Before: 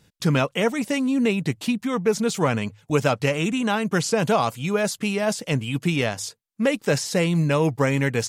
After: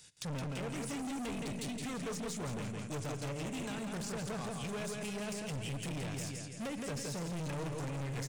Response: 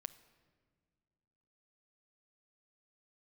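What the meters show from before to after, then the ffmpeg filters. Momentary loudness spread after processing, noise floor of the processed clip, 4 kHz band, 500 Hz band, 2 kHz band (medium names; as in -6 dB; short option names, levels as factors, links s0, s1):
2 LU, -45 dBFS, -14.5 dB, -19.0 dB, -18.5 dB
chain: -filter_complex "[0:a]aresample=22050,aresample=44100,acrossover=split=2100[s0][s1];[s1]acompressor=threshold=0.0112:ratio=6[s2];[s0][s2]amix=inputs=2:normalize=0,crystalizer=i=8.5:c=0,acrossover=split=380[s3][s4];[s4]acompressor=threshold=0.0224:ratio=4[s5];[s3][s5]amix=inputs=2:normalize=0,aeval=exprs='0.266*(cos(1*acos(clip(val(0)/0.266,-1,1)))-cos(1*PI/2))+0.00841*(cos(4*acos(clip(val(0)/0.266,-1,1)))-cos(4*PI/2))':c=same,aecho=1:1:168|336|504|672|840|1008|1176:0.531|0.281|0.149|0.079|0.0419|0.0222|0.0118[s6];[1:a]atrim=start_sample=2205[s7];[s6][s7]afir=irnorm=-1:irlink=0,asoftclip=type=hard:threshold=0.0316,equalizer=f=220:w=0.66:g=-3.5,volume=0.596"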